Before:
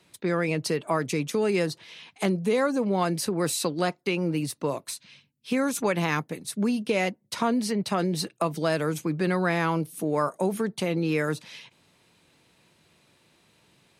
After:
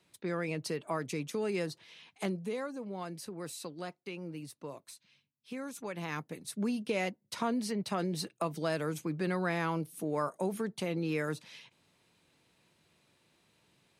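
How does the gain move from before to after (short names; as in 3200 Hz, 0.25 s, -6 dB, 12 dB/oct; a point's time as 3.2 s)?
2.26 s -9 dB
2.73 s -15.5 dB
5.86 s -15.5 dB
6.4 s -7.5 dB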